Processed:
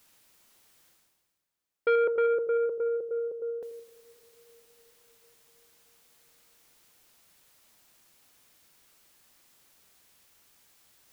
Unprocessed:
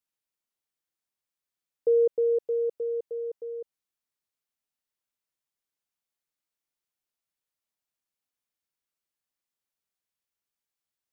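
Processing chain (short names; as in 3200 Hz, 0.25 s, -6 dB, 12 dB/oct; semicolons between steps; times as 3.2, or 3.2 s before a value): reverse; upward compressor, threshold -44 dBFS; reverse; dark delay 84 ms, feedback 56%, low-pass 490 Hz, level -10 dB; reverb RT60 5.2 s, pre-delay 27 ms, DRR 19.5 dB; core saturation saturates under 870 Hz; gain +2 dB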